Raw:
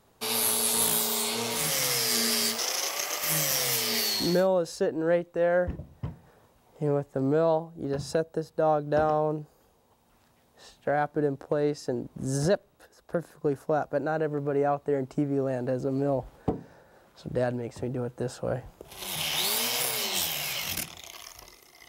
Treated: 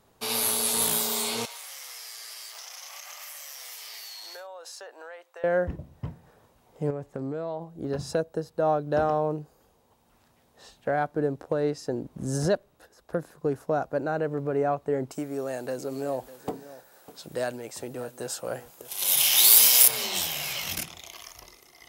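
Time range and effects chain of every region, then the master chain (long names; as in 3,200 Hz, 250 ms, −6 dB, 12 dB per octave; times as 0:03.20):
0:01.45–0:05.44: high-pass filter 700 Hz 24 dB per octave + downward compressor 12 to 1, threshold −38 dBFS
0:06.90–0:07.70: high-shelf EQ 8,900 Hz −5 dB + downward compressor 10 to 1, threshold −28 dBFS
0:15.11–0:19.88: RIAA equalisation recording + single-tap delay 601 ms −16.5 dB
whole clip: no processing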